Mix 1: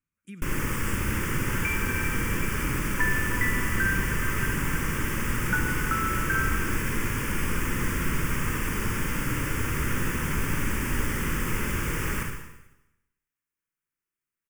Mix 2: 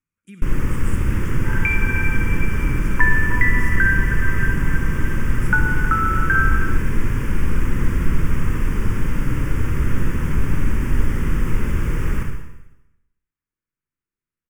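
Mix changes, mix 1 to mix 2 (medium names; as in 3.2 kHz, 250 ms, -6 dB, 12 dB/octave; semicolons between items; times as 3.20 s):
speech: send +9.0 dB; first sound: add tilt EQ -2.5 dB/octave; second sound +9.0 dB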